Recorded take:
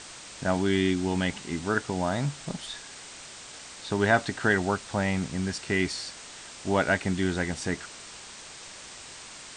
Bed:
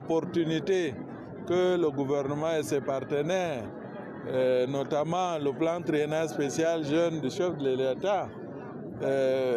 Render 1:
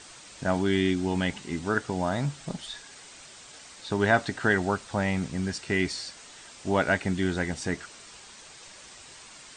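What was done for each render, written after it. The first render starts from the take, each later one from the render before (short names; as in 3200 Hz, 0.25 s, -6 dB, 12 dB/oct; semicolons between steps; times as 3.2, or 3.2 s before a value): denoiser 6 dB, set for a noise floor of -45 dBFS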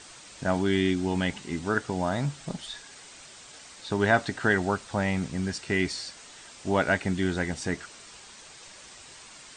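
nothing audible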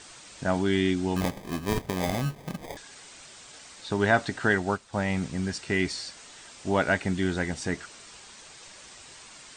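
1.16–2.77 sample-rate reducer 1400 Hz; 4.55–5.1 upward expander, over -43 dBFS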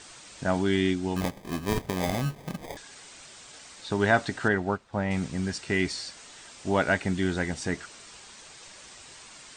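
0.76–1.45 upward expander, over -34 dBFS; 4.48–5.11 LPF 1700 Hz 6 dB/oct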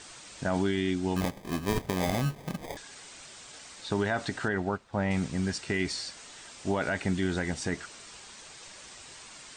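limiter -18.5 dBFS, peak gain reduction 10 dB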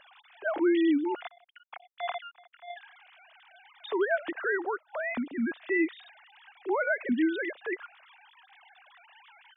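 sine-wave speech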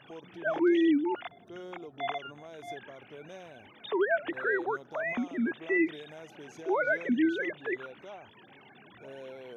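add bed -19 dB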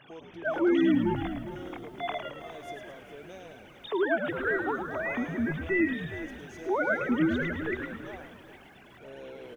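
frequency-shifting echo 0.108 s, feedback 54%, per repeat -78 Hz, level -7 dB; lo-fi delay 0.407 s, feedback 35%, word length 9-bit, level -13 dB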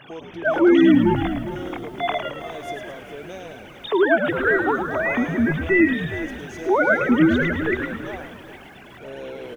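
gain +9.5 dB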